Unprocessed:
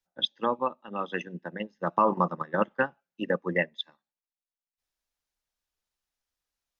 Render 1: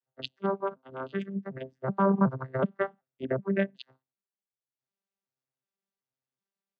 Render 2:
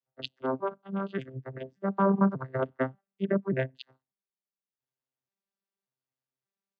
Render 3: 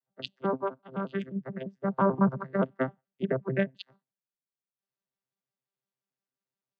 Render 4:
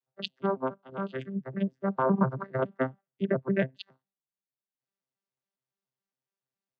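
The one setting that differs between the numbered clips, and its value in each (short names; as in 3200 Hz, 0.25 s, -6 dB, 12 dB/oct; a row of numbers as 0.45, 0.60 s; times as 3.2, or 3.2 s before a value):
arpeggiated vocoder, a note every: 375, 585, 87, 139 ms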